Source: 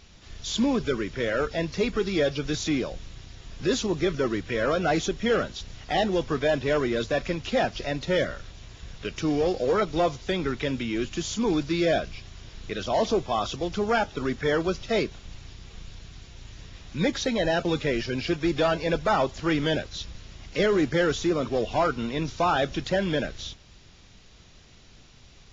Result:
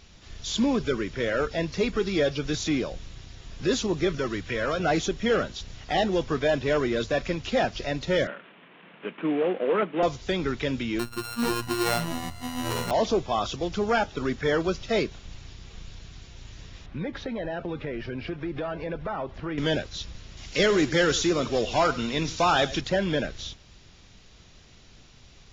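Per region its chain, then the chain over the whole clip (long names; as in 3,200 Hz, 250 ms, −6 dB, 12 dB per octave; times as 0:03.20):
0:04.18–0:04.80: parametric band 340 Hz −4.5 dB 2.4 octaves + multiband upward and downward compressor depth 40%
0:08.27–0:10.03: variable-slope delta modulation 16 kbit/s + Butterworth high-pass 170 Hz 48 dB per octave + notch filter 770 Hz, Q 17
0:10.99–0:12.91: samples sorted by size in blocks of 32 samples + phases set to zero 118 Hz + delay with pitch and tempo change per echo 433 ms, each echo −6 semitones, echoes 2, each echo −6 dB
0:16.86–0:19.58: low-pass filter 2,100 Hz + downward compressor 4 to 1, threshold −29 dBFS
0:20.37–0:22.81: high-shelf EQ 2,500 Hz +9.5 dB + single-tap delay 99 ms −17 dB
whole clip: no processing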